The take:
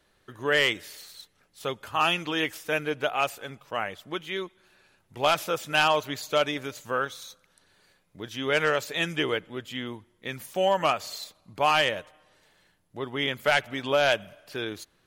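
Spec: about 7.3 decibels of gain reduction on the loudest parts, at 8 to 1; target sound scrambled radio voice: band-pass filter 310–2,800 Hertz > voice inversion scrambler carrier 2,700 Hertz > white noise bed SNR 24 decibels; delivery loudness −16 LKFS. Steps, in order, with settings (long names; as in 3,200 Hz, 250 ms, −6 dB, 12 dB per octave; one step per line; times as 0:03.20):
downward compressor 8 to 1, threshold −25 dBFS
band-pass filter 310–2,800 Hz
voice inversion scrambler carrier 2,700 Hz
white noise bed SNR 24 dB
level +16 dB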